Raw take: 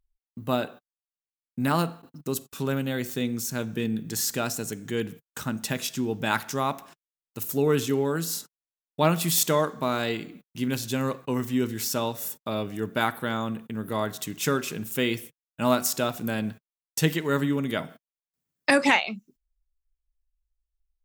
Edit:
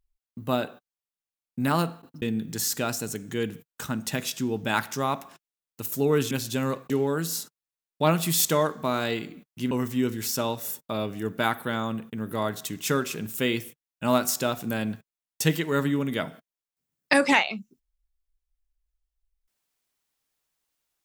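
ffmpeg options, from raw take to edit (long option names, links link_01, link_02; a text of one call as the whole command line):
ffmpeg -i in.wav -filter_complex "[0:a]asplit=5[link_01][link_02][link_03][link_04][link_05];[link_01]atrim=end=2.222[link_06];[link_02]atrim=start=3.788:end=7.882[link_07];[link_03]atrim=start=10.688:end=11.282[link_08];[link_04]atrim=start=7.878:end=10.692[link_09];[link_05]atrim=start=11.278[link_10];[link_06][link_07]acrossfade=duration=0.004:curve1=hsin:curve2=hsin[link_11];[link_11][link_08]acrossfade=duration=0.004:curve1=hsin:curve2=hsin[link_12];[link_12][link_09]acrossfade=duration=0.004:curve1=hsin:curve2=hsin[link_13];[link_13][link_10]acrossfade=duration=0.004:curve1=hsin:curve2=hsin" out.wav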